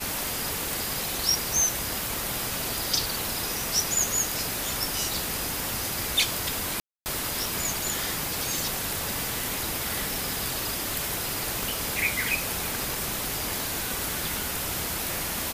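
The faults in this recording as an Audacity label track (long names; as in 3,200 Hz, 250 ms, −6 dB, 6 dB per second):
6.800000	7.060000	drop-out 259 ms
11.630000	11.630000	click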